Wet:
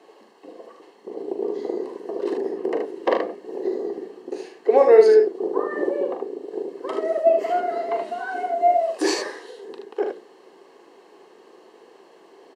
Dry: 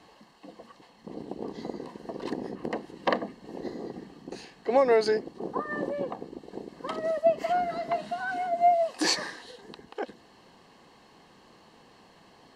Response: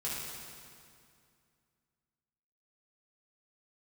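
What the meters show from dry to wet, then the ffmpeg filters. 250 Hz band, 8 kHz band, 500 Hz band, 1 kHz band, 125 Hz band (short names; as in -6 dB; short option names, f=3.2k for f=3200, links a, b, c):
+5.5 dB, n/a, +9.0 dB, +4.0 dB, under -10 dB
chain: -af "equalizer=f=4.2k:w=1.7:g=-4,flanger=delay=1.1:depth=8.4:regen=82:speed=0.84:shape=triangular,highpass=f=390:t=q:w=4.8,aecho=1:1:41|76:0.398|0.531,volume=4.5dB"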